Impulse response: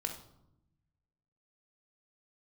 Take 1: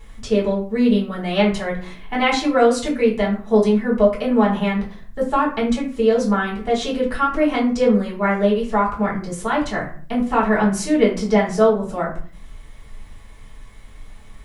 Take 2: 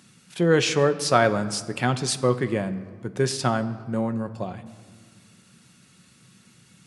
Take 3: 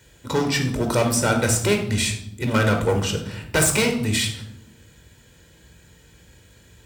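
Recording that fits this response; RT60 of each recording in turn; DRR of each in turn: 3; 0.45, 1.9, 0.85 s; -5.5, 8.5, 3.5 dB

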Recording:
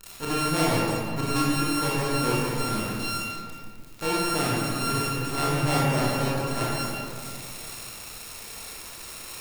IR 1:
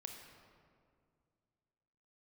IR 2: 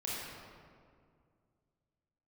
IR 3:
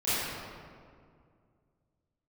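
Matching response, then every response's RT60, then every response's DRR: 2; 2.2, 2.2, 2.2 s; 3.0, -7.0, -16.0 dB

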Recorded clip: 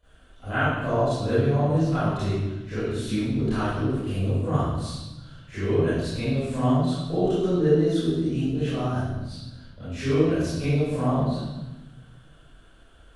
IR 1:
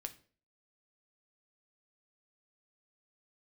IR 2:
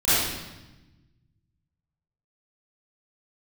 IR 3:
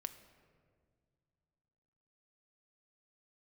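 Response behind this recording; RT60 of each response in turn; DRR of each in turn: 2; 0.45 s, 1.1 s, not exponential; 7.0, -17.0, 9.0 dB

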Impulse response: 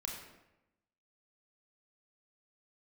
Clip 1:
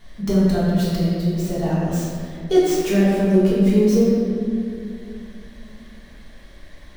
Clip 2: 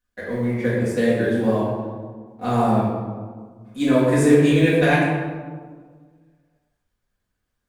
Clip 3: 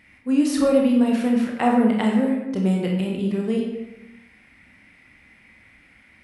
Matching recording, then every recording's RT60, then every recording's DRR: 3; 2.4, 1.6, 0.95 s; -9.0, -9.5, -0.5 dB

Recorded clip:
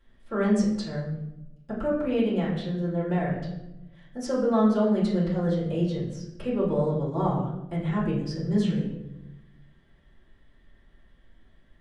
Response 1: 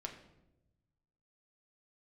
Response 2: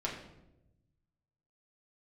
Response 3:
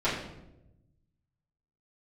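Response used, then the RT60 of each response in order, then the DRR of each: 3; 0.95, 0.95, 0.95 s; 1.5, -4.5, -13.0 dB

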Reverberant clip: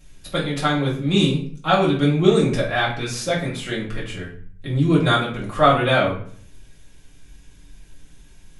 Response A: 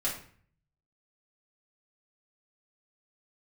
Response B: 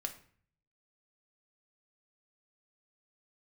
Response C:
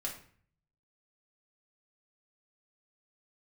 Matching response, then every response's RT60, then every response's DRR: A; 0.50, 0.50, 0.50 s; -7.5, 4.5, -2.5 dB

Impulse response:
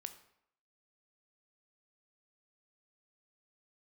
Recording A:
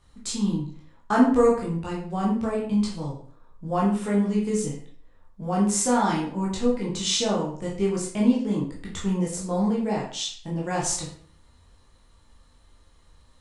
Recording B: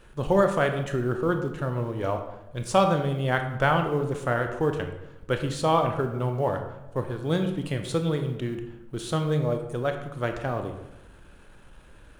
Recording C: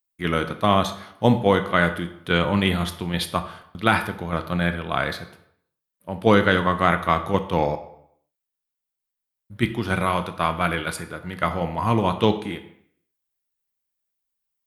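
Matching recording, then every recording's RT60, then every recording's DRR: C; 0.50, 1.0, 0.70 s; -4.5, 5.5, 8.5 dB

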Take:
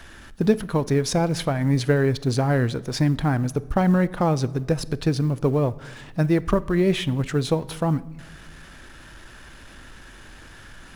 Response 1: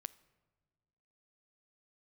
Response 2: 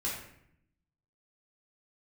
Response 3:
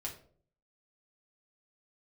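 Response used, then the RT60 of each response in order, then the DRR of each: 1; not exponential, 0.70 s, 0.50 s; 17.0, -7.5, -3.0 dB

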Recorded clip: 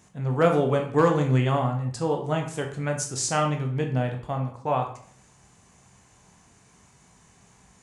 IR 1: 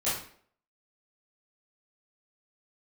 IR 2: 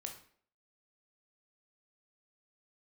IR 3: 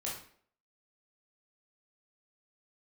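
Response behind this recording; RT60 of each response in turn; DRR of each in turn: 2; 0.55, 0.55, 0.55 s; -12.5, 2.5, -5.5 dB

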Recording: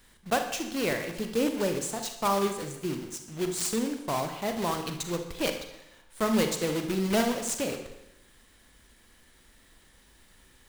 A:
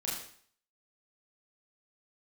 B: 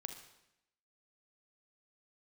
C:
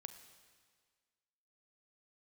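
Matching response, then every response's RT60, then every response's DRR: B; 0.55, 0.85, 1.7 s; -6.0, 5.5, 9.0 dB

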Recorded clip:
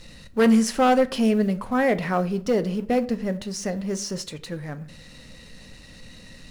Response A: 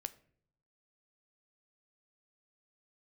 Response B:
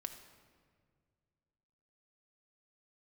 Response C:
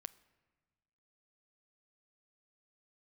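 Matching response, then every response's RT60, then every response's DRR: A; 0.60, 1.9, 1.4 s; 11.5, 6.0, 15.5 dB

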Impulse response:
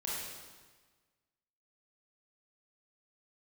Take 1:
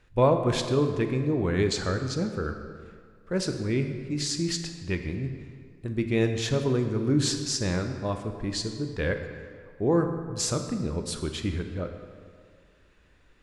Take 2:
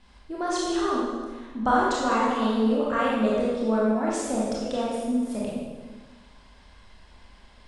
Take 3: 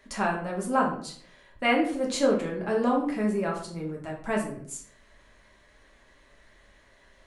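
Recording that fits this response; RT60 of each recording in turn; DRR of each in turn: 2; 2.0, 1.4, 0.55 s; 6.0, -6.5, -2.0 dB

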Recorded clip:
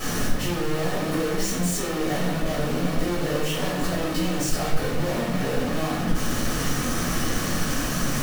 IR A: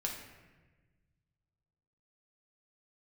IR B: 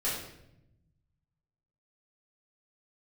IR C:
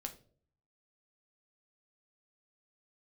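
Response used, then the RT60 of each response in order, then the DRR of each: B; 1.3, 0.80, 0.50 s; -1.0, -9.0, 4.5 dB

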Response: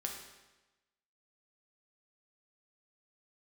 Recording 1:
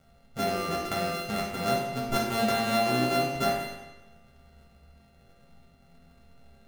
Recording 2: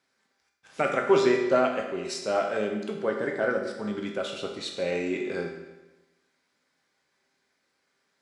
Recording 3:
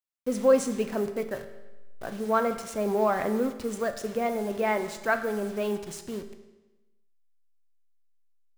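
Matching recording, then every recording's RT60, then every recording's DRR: 2; 1.1, 1.1, 1.1 s; -5.0, 0.5, 7.0 dB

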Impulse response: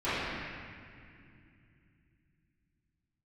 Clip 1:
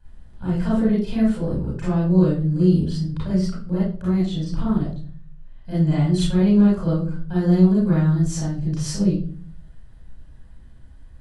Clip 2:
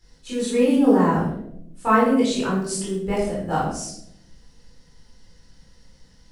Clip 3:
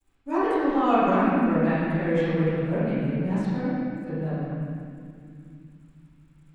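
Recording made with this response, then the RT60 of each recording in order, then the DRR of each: 3; 0.45, 0.75, 2.4 s; -9.0, -8.0, -18.0 dB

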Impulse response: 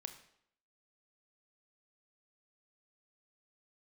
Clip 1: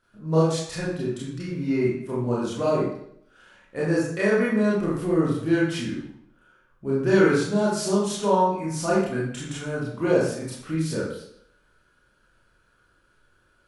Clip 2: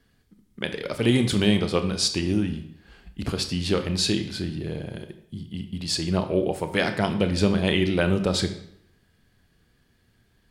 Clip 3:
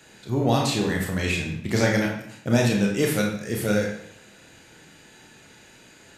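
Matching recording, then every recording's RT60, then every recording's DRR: 2; 0.70, 0.70, 0.70 s; -7.0, 7.5, -0.5 dB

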